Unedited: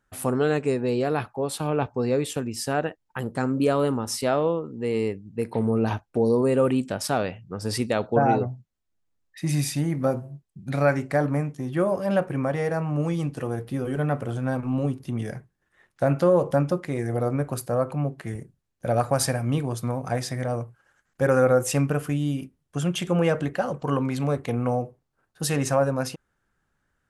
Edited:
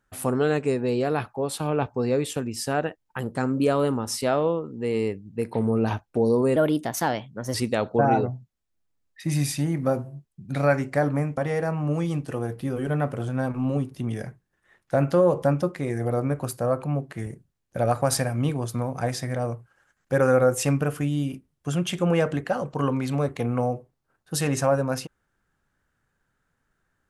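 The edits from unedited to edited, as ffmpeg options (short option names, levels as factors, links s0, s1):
-filter_complex "[0:a]asplit=4[s0][s1][s2][s3];[s0]atrim=end=6.564[s4];[s1]atrim=start=6.56:end=7.72,asetpts=PTS-STARTPTS,asetrate=52038,aresample=44100[s5];[s2]atrim=start=7.716:end=11.552[s6];[s3]atrim=start=12.458[s7];[s4][s5]acrossfade=d=0.004:c1=hsin:c2=hsin[s8];[s8][s6]acrossfade=d=0.004:c1=hsin:c2=hsin[s9];[s9][s7]acrossfade=d=0.004:c1=hsin:c2=hsin"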